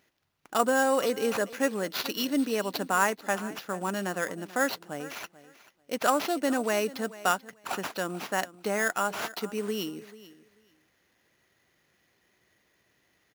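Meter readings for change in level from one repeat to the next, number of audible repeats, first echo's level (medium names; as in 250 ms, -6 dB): -15.5 dB, 2, -18.0 dB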